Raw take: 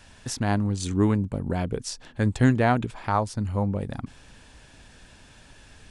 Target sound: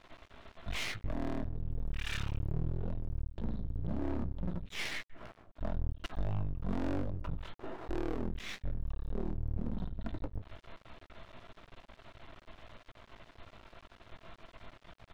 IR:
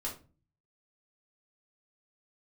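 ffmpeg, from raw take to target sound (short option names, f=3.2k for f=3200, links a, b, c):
-filter_complex "[0:a]acompressor=threshold=-23dB:ratio=6,asoftclip=type=tanh:threshold=-28.5dB,asplit=2[a][b];[b]adelay=62,lowpass=f=1.8k:p=1,volume=-19.5dB,asplit=2[c][d];[d]adelay=62,lowpass=f=1.8k:p=1,volume=0.4,asplit=2[e][f];[f]adelay=62,lowpass=f=1.8k:p=1,volume=0.4[g];[c][e][g]amix=inputs=3:normalize=0[h];[a][h]amix=inputs=2:normalize=0,flanger=delay=6.3:depth=1.2:regen=-29:speed=0.47:shape=triangular,asetrate=17199,aresample=44100,aeval=exprs='max(val(0),0)':c=same,volume=5dB"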